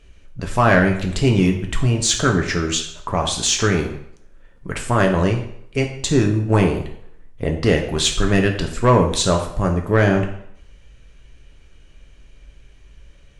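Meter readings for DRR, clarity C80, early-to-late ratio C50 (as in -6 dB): 2.0 dB, 11.0 dB, 8.0 dB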